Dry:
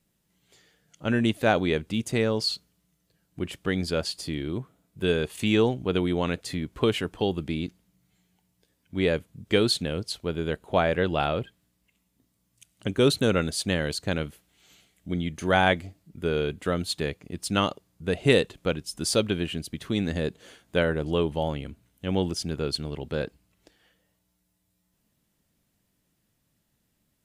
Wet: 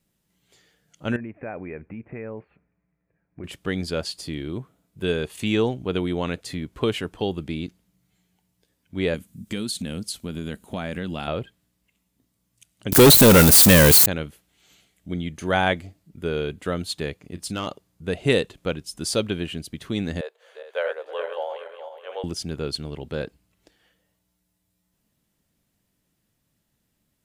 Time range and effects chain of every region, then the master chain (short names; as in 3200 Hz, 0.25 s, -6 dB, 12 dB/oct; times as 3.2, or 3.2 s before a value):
1.16–3.44 compressor 4:1, threshold -30 dBFS + rippled Chebyshev low-pass 2500 Hz, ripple 3 dB
9.14–11.28 EQ curve 140 Hz 0 dB, 210 Hz +10 dB, 410 Hz -4 dB, 780 Hz -3 dB, 4800 Hz +4 dB, 8600 Hz +11 dB + compressor 4:1, threshold -26 dBFS
12.92–14.06 switching spikes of -15.5 dBFS + high shelf 7100 Hz +5 dB + sample leveller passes 5
17.17–17.67 compressor 2:1, threshold -26 dBFS + hard clip -20.5 dBFS + doubler 33 ms -14 dB
20.21–22.24 regenerating reverse delay 0.21 s, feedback 58%, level -6 dB + elliptic high-pass 490 Hz, stop band 50 dB + bell 8300 Hz -11.5 dB 2.7 oct
whole clip: dry